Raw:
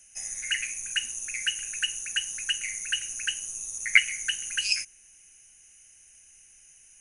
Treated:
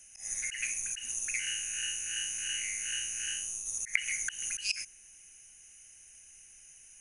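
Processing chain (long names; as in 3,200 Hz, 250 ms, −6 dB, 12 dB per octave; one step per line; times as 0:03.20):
0:01.39–0:03.66: spectrum smeared in time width 145 ms
volume swells 155 ms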